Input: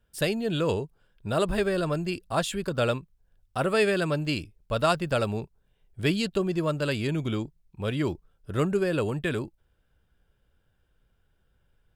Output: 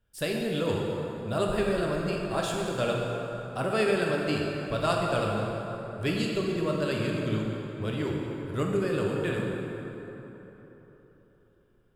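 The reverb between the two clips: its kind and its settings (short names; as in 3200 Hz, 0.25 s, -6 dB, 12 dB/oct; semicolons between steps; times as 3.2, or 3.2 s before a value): plate-style reverb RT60 3.8 s, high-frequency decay 0.55×, DRR -1.5 dB; gain -5 dB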